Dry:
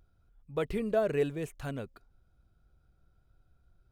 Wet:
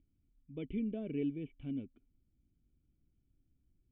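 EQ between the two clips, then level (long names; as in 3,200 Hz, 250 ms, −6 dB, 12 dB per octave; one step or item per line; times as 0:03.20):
formant resonators in series i
+4.0 dB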